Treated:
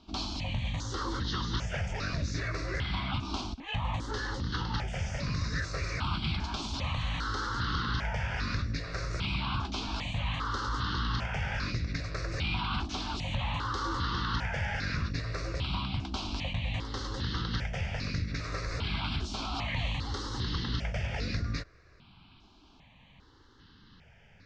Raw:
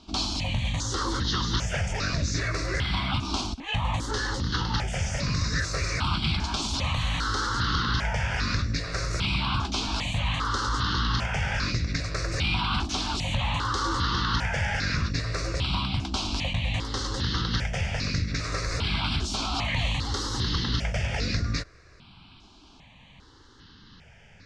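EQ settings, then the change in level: air absorption 96 m; -5.0 dB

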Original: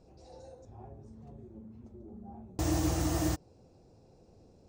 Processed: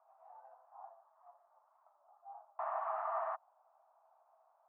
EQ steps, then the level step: rippled Chebyshev high-pass 630 Hz, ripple 3 dB; ladder low-pass 1300 Hz, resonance 70%; air absorption 420 m; +12.5 dB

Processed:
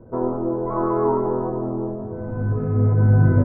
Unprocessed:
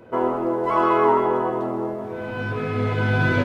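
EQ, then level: inverse Chebyshev low-pass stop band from 4900 Hz, stop band 60 dB; tilt -4.5 dB/oct; -6.5 dB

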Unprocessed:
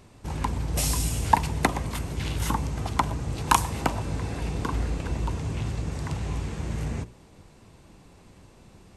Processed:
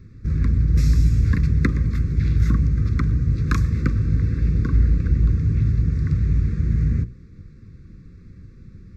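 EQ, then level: Chebyshev band-stop 530–1100 Hz, order 4; tone controls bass +13 dB, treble -9 dB; fixed phaser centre 3000 Hz, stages 6; 0.0 dB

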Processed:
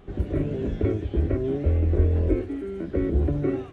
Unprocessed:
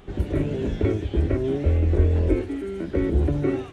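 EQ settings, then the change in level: high shelf 2300 Hz -9 dB; notch 890 Hz, Q 12; -1.5 dB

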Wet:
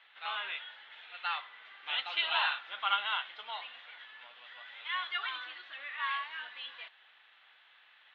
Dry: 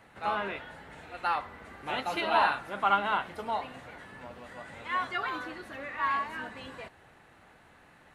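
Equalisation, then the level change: HPF 1400 Hz 12 dB/oct; synth low-pass 3400 Hz, resonance Q 5.8; air absorption 140 m; -2.0 dB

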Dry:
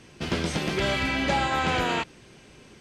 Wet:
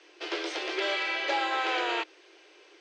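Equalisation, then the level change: Chebyshev high-pass 310 Hz, order 10; air absorption 140 m; bell 5200 Hz +6.5 dB 2.1 oct; -3.0 dB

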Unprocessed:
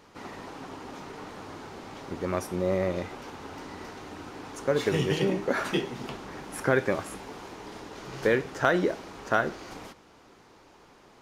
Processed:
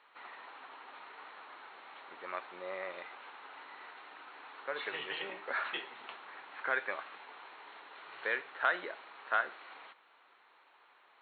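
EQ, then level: HPF 1200 Hz 12 dB/oct; brick-wall FIR low-pass 4400 Hz; air absorption 280 m; 0.0 dB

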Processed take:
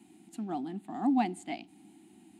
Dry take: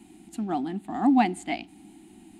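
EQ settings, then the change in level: HPF 97 Hz 24 dB/oct; dynamic EQ 1800 Hz, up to -4 dB, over -43 dBFS, Q 0.96; -6.5 dB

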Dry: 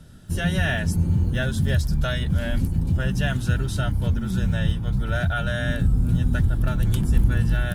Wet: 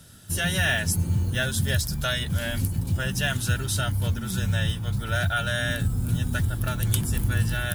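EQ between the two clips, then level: tilt +2.5 dB/oct; bell 100 Hz +10.5 dB 0.4 oct; high shelf 8100 Hz +3.5 dB; 0.0 dB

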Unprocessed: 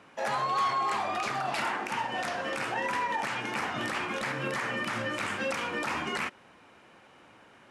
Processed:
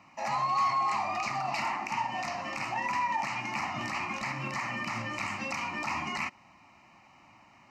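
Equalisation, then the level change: fixed phaser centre 2300 Hz, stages 8; +1.5 dB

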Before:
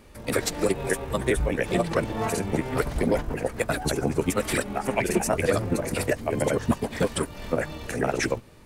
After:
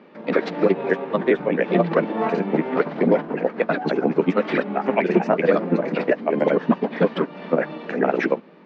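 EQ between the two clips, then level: Gaussian blur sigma 2 samples; elliptic high-pass 170 Hz, stop band 40 dB; air absorption 210 m; +7.0 dB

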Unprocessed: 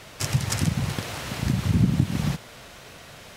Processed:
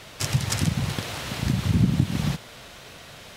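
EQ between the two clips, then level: bell 3600 Hz +3 dB 0.78 oct; 0.0 dB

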